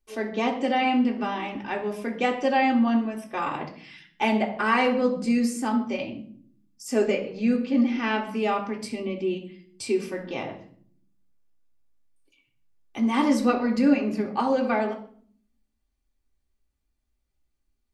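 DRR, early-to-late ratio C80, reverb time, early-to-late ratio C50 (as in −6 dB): −0.5 dB, 14.0 dB, 0.55 s, 11.0 dB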